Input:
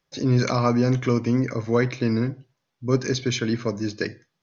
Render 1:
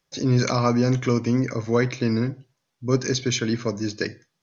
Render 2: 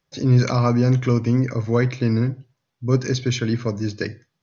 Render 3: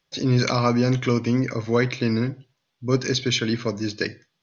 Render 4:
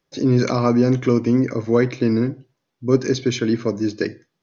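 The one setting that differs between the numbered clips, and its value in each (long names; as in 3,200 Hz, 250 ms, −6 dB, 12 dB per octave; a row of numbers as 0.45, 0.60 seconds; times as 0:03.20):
parametric band, centre frequency: 8,900, 100, 3,400, 330 Hertz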